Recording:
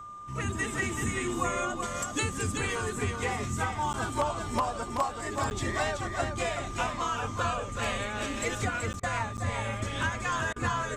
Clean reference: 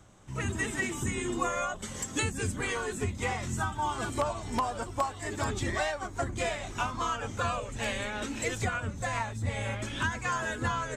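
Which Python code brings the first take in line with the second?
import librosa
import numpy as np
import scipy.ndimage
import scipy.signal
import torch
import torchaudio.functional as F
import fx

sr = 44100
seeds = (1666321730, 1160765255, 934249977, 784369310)

y = fx.notch(x, sr, hz=1200.0, q=30.0)
y = fx.fix_interpolate(y, sr, at_s=(3.93, 5.5, 8.93, 9.37), length_ms=9.7)
y = fx.fix_interpolate(y, sr, at_s=(9.0, 10.53), length_ms=30.0)
y = fx.fix_echo_inverse(y, sr, delay_ms=379, level_db=-5.5)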